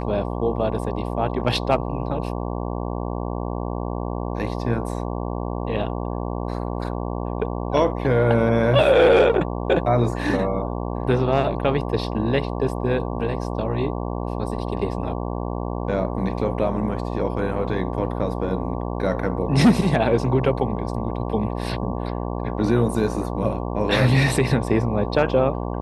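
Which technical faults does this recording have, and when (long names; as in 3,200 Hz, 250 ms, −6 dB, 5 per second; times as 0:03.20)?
mains buzz 60 Hz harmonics 19 −27 dBFS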